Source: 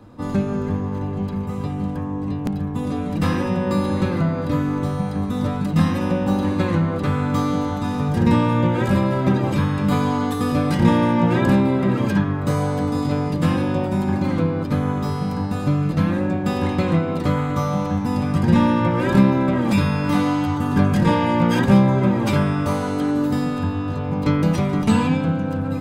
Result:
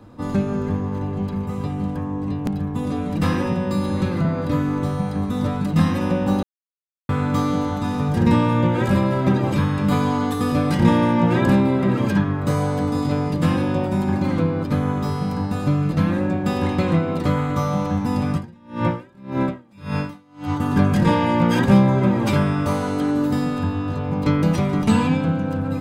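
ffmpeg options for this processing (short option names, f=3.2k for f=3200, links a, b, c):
-filter_complex "[0:a]asettb=1/sr,asplit=3[a][b][c];[a]atrim=end=3.524[d];[b]atrim=start=3.52:end=4.25,asetpts=PTS-STARTPTS,afade=t=in:d=0.004:c=qsin,afade=t=out:st=0.726:d=0.004:c=qsin,acrossover=split=240|3000[e][f][g];[f]acompressor=threshold=-24dB:ratio=6:attack=3.2:release=140:knee=2.83:detection=peak[h];[e][h][g]amix=inputs=3:normalize=0[i];[c]atrim=start=4.246[j];[d][i]acrossfade=d=0.004:c1=hsin:c2=qsin[k];[k][j]acrossfade=d=0.004:c1=qsin:c2=hsin,asettb=1/sr,asplit=3[l][m][n];[l]atrim=end=18.314[o];[m]atrim=start=18.31:end=20.6,asetpts=PTS-STARTPTS,afade=t=in:d=0.004:c=qsin,afade=t=out:st=2.286:d=0.004:c=qsin,aeval=exprs='val(0)*pow(10,-35*(0.5-0.5*cos(2*PI*1.8*n/s))/20)':c=same[p];[n]atrim=start=20.596[q];[o][p]acrossfade=d=0.004:c1=hsin:c2=qsin[r];[r][q]acrossfade=d=0.004:c1=qsin:c2=hsin,asplit=3[s][t][u];[s]atrim=end=6.43,asetpts=PTS-STARTPTS,afade=t=out:st=6.426:d=0.004:c=hsin[v];[t]atrim=start=6.43:end=7.09,asetpts=PTS-STARTPTS,volume=0[w];[u]atrim=start=7.09,asetpts=PTS-STARTPTS,afade=t=in:d=0.004:c=hsin[x];[v][w][x]concat=n=3:v=0:a=1"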